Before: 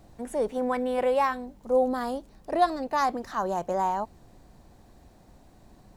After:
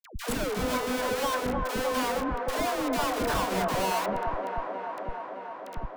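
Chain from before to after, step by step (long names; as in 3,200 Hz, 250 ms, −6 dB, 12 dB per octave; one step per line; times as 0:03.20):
EQ curve with evenly spaced ripples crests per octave 1.7, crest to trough 11 dB
square-wave tremolo 1.7 Hz, depth 65%, duty 90%
comparator with hysteresis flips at −42 dBFS
all-pass dispersion lows, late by 112 ms, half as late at 660 Hz
on a send: delay with a band-pass on its return 308 ms, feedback 79%, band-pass 780 Hz, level −3.5 dB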